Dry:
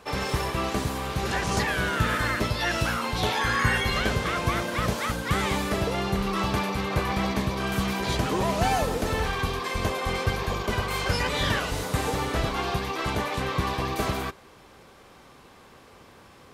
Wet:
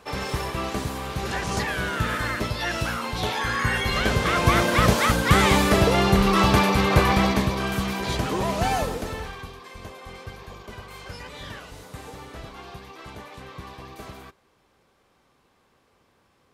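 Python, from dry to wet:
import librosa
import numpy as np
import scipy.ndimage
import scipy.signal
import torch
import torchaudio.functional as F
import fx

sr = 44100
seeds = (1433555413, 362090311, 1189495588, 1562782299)

y = fx.gain(x, sr, db=fx.line((3.67, -1.0), (4.62, 8.0), (7.05, 8.0), (7.82, 0.0), (8.82, 0.0), (9.56, -13.0)))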